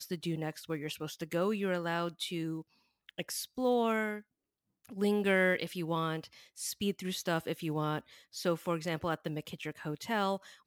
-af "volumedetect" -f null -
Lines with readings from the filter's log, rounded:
mean_volume: -34.8 dB
max_volume: -16.3 dB